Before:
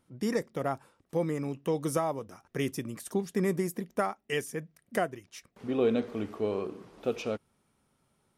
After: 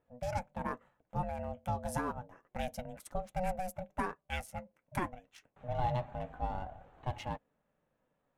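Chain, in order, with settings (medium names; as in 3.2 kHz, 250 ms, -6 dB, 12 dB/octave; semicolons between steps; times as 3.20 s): local Wiener filter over 9 samples; ring modulator 370 Hz; flange 0.29 Hz, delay 2.2 ms, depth 6.2 ms, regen -55%; trim +1 dB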